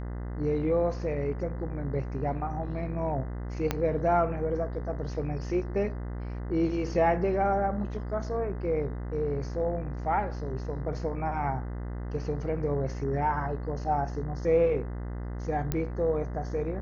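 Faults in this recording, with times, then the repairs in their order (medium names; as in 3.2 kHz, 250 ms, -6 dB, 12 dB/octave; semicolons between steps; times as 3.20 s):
buzz 60 Hz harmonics 34 -35 dBFS
3.71 s: pop -12 dBFS
15.72 s: pop -14 dBFS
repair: de-click; de-hum 60 Hz, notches 34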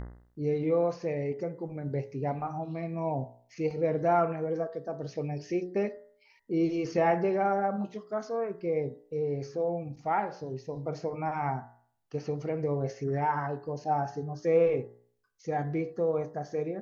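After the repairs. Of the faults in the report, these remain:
3.71 s: pop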